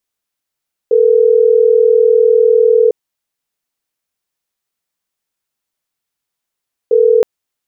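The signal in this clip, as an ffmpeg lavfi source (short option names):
-f lavfi -i "aevalsrc='0.355*(sin(2*PI*440*t)+sin(2*PI*480*t))*clip(min(mod(t,6),2-mod(t,6))/0.005,0,1)':d=6.32:s=44100"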